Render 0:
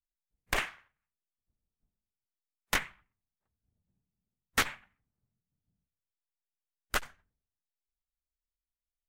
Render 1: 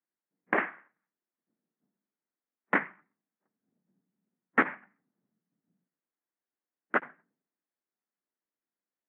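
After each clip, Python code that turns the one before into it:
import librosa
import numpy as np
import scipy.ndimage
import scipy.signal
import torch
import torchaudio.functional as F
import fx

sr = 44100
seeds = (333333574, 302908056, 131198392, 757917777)

y = scipy.signal.sosfilt(scipy.signal.ellip(3, 1.0, 40, [180.0, 1900.0], 'bandpass', fs=sr, output='sos'), x)
y = fx.peak_eq(y, sr, hz=300.0, db=8.0, octaves=0.86)
y = y * librosa.db_to_amplitude(5.5)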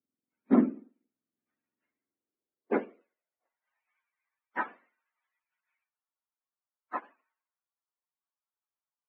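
y = fx.octave_mirror(x, sr, pivot_hz=650.0)
y = fx.filter_sweep_highpass(y, sr, from_hz=260.0, to_hz=980.0, start_s=1.81, end_s=4.03, q=2.3)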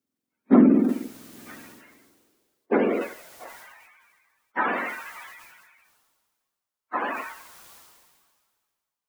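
y = fx.sustainer(x, sr, db_per_s=32.0)
y = y * librosa.db_to_amplitude(6.0)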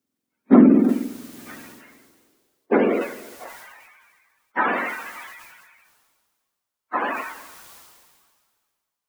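y = x + 10.0 ** (-22.5 / 20.0) * np.pad(x, (int(333 * sr / 1000.0), 0))[:len(x)]
y = y * librosa.db_to_amplitude(3.5)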